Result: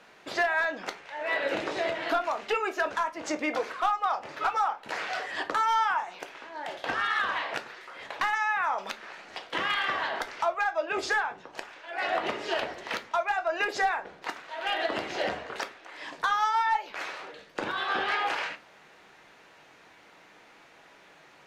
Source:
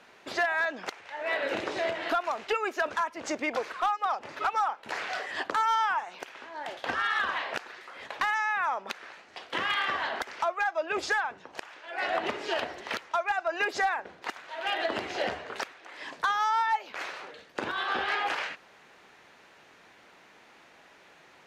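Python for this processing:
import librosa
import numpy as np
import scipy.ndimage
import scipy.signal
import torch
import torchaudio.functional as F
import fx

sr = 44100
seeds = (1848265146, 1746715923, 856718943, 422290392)

y = fx.room_shoebox(x, sr, seeds[0], volume_m3=120.0, walls='furnished', distance_m=0.6)
y = fx.band_squash(y, sr, depth_pct=70, at=(8.78, 9.4))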